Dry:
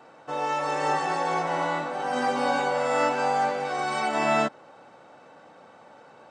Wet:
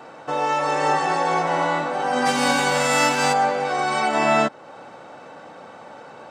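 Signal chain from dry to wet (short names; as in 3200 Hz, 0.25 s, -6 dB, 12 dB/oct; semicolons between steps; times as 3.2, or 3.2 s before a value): 2.25–3.32 spectral whitening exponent 0.6; in parallel at 0 dB: compressor, threshold -37 dBFS, peak gain reduction 16.5 dB; on the sum: gain +3.5 dB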